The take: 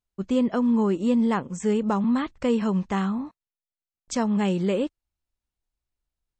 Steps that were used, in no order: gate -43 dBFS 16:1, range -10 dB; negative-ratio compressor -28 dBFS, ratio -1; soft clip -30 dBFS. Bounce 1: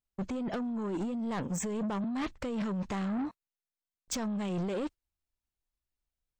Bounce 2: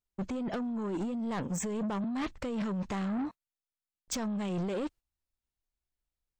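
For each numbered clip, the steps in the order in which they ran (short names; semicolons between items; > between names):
negative-ratio compressor > soft clip > gate; gate > negative-ratio compressor > soft clip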